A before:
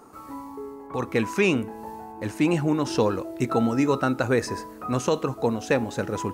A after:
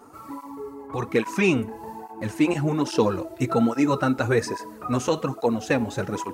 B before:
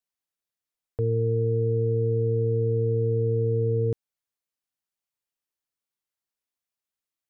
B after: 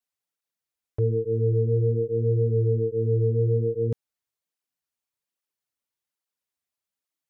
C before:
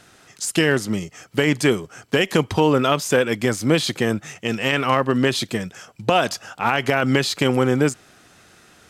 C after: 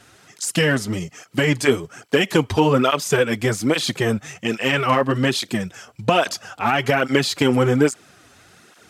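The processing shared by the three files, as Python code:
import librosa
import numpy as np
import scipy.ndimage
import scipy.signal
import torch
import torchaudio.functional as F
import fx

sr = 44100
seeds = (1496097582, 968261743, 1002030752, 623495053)

y = fx.flanger_cancel(x, sr, hz=1.2, depth_ms=6.6)
y = y * 10.0 ** (3.5 / 20.0)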